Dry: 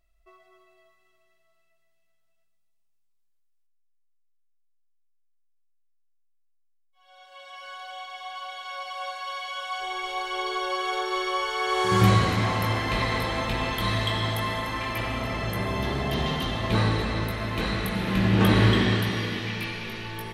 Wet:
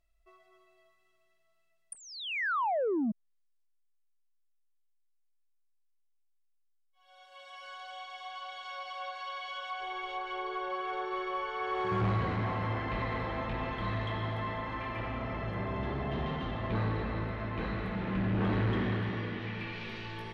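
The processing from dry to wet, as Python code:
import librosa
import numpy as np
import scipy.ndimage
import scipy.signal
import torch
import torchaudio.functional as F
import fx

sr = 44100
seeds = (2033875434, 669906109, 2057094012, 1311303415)

y = fx.spec_paint(x, sr, seeds[0], shape='fall', start_s=1.92, length_s=1.2, low_hz=200.0, high_hz=9600.0, level_db=-22.0)
y = 10.0 ** (-19.5 / 20.0) * np.tanh(y / 10.0 ** (-19.5 / 20.0))
y = fx.env_lowpass_down(y, sr, base_hz=2000.0, full_db=-27.0)
y = y * 10.0 ** (-5.5 / 20.0)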